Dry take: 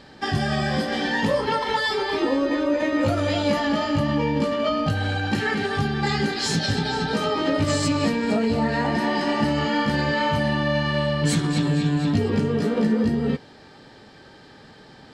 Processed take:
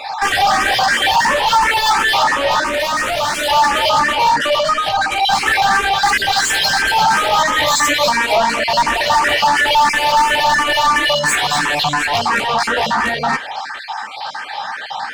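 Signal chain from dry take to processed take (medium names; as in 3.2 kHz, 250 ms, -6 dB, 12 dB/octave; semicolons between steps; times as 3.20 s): random holes in the spectrogram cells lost 27%; 4.55–5.12 s: compression 6:1, threshold -26 dBFS, peak gain reduction 7.5 dB; resonant low shelf 560 Hz -13 dB, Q 3; overdrive pedal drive 31 dB, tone 5.8 kHz, clips at -7 dBFS; 2.64–3.49 s: hard clipper -17 dBFS, distortion -21 dB; 7.39–8.08 s: rippled EQ curve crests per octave 1.1, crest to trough 8 dB; barber-pole phaser +2.9 Hz; trim +2.5 dB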